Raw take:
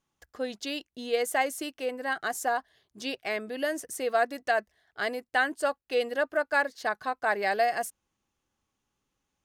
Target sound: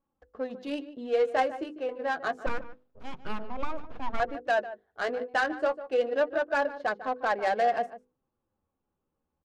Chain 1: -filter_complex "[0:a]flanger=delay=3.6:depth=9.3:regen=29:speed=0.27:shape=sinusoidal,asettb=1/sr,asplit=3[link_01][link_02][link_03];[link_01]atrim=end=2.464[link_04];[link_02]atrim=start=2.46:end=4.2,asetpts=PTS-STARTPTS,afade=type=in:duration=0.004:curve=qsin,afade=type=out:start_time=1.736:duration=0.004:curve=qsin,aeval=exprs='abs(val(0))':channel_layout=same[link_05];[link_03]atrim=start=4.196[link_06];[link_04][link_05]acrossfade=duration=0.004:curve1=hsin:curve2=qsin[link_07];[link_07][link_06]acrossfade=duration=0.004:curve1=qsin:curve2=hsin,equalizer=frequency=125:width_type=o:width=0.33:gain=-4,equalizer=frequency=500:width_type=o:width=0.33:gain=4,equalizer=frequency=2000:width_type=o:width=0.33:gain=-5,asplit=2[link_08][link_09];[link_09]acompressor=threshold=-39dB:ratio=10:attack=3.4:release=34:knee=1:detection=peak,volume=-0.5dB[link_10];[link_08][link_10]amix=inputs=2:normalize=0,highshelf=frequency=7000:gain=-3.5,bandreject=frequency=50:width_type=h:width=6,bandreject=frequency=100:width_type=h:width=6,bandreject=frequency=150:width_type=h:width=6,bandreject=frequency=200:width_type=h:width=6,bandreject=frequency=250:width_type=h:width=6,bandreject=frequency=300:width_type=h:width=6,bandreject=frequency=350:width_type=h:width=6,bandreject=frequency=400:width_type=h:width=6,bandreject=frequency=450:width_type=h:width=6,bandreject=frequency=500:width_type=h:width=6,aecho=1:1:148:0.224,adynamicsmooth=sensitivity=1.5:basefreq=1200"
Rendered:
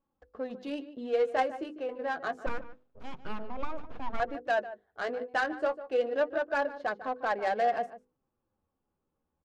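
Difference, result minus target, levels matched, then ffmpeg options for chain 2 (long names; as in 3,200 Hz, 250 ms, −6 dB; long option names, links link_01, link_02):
downward compressor: peak gain reduction +8.5 dB
-filter_complex "[0:a]flanger=delay=3.6:depth=9.3:regen=29:speed=0.27:shape=sinusoidal,asettb=1/sr,asplit=3[link_01][link_02][link_03];[link_01]atrim=end=2.464[link_04];[link_02]atrim=start=2.46:end=4.2,asetpts=PTS-STARTPTS,afade=type=in:duration=0.004:curve=qsin,afade=type=out:start_time=1.736:duration=0.004:curve=qsin,aeval=exprs='abs(val(0))':channel_layout=same[link_05];[link_03]atrim=start=4.196[link_06];[link_04][link_05]acrossfade=duration=0.004:curve1=hsin:curve2=qsin[link_07];[link_07][link_06]acrossfade=duration=0.004:curve1=qsin:curve2=hsin,equalizer=frequency=125:width_type=o:width=0.33:gain=-4,equalizer=frequency=500:width_type=o:width=0.33:gain=4,equalizer=frequency=2000:width_type=o:width=0.33:gain=-5,asplit=2[link_08][link_09];[link_09]acompressor=threshold=-29.5dB:ratio=10:attack=3.4:release=34:knee=1:detection=peak,volume=-0.5dB[link_10];[link_08][link_10]amix=inputs=2:normalize=0,highshelf=frequency=7000:gain=-3.5,bandreject=frequency=50:width_type=h:width=6,bandreject=frequency=100:width_type=h:width=6,bandreject=frequency=150:width_type=h:width=6,bandreject=frequency=200:width_type=h:width=6,bandreject=frequency=250:width_type=h:width=6,bandreject=frequency=300:width_type=h:width=6,bandreject=frequency=350:width_type=h:width=6,bandreject=frequency=400:width_type=h:width=6,bandreject=frequency=450:width_type=h:width=6,bandreject=frequency=500:width_type=h:width=6,aecho=1:1:148:0.224,adynamicsmooth=sensitivity=1.5:basefreq=1200"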